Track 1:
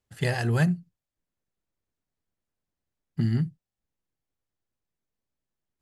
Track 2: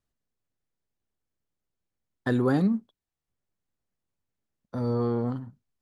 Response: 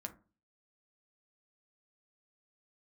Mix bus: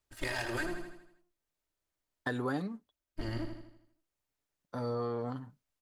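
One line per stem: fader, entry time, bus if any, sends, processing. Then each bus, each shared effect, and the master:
-1.5 dB, 0.00 s, no send, echo send -8 dB, comb filter that takes the minimum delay 3.2 ms; peaking EQ 200 Hz -10.5 dB 0.96 oct
+0.5 dB, 0.00 s, no send, no echo send, bass shelf 340 Hz -11.5 dB; comb 6.8 ms, depth 35%; auto duck -17 dB, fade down 0.60 s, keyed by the first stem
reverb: none
echo: feedback delay 80 ms, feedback 48%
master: compression 3:1, threshold -32 dBFS, peak gain reduction 7 dB

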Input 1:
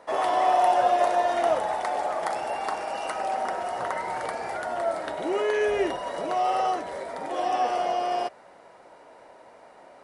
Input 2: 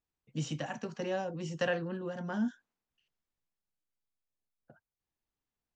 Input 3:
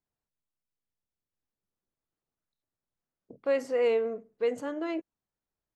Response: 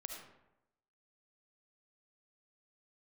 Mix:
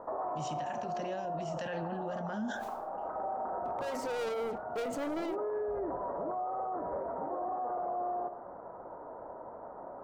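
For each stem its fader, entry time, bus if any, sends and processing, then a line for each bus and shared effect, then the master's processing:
+3.0 dB, 0.00 s, send -8 dB, steep low-pass 1.3 kHz 36 dB/octave; bass shelf 110 Hz +6.5 dB; compression 1.5:1, threshold -37 dBFS, peak gain reduction 7.5 dB; auto duck -21 dB, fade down 1.15 s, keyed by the second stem
0.0 dB, 0.00 s, send -11 dB, decay stretcher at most 120 dB/s
-11.0 dB, 0.35 s, no send, waveshaping leveller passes 5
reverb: on, RT60 0.90 s, pre-delay 30 ms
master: peak limiter -29 dBFS, peak gain reduction 13.5 dB

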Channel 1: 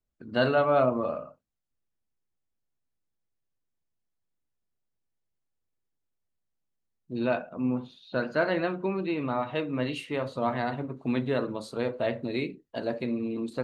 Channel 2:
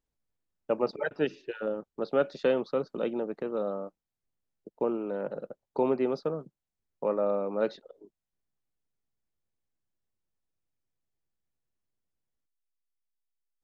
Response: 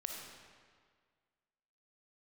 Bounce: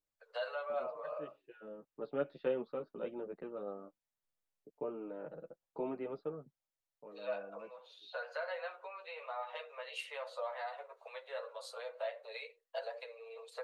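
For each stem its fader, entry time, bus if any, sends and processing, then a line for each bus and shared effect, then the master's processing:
-0.5 dB, 0.00 s, no send, compression 12:1, threshold -31 dBFS, peak gain reduction 13.5 dB; steep high-pass 470 Hz 96 dB/octave
-8.0 dB, 0.00 s, no send, low-pass 3.3 kHz 24 dB/octave; auto duck -12 dB, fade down 0.60 s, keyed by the first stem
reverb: none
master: chorus voices 2, 0.15 Hz, delay 10 ms, depth 3.9 ms

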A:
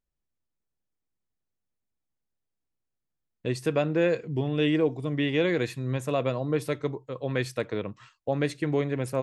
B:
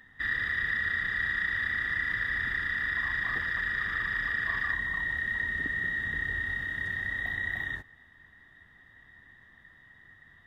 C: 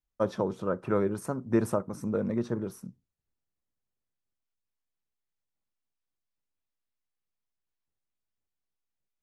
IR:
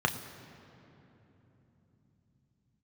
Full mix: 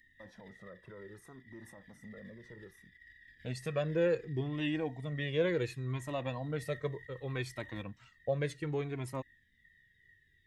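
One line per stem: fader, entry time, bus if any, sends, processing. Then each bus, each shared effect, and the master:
-4.0 dB, 0.00 s, no send, phaser 0.73 Hz, delay 1.4 ms, feedback 28%
-15.0 dB, 0.00 s, no send, elliptic band-stop 430–1900 Hz; treble shelf 2.7 kHz +6 dB; compressor with a negative ratio -37 dBFS, ratio -0.5
-12.5 dB, 0.00 s, no send, peak limiter -24 dBFS, peak gain reduction 11.5 dB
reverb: none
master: Shepard-style flanger falling 0.66 Hz

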